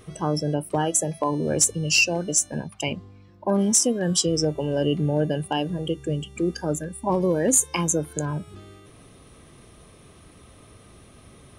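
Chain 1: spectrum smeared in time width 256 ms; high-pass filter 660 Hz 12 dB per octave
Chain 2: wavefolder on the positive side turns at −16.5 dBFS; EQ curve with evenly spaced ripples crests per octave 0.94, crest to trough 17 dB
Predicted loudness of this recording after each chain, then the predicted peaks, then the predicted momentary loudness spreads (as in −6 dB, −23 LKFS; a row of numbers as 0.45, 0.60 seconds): −32.5, −22.0 LKFS; −16.5, −2.5 dBFS; 15, 12 LU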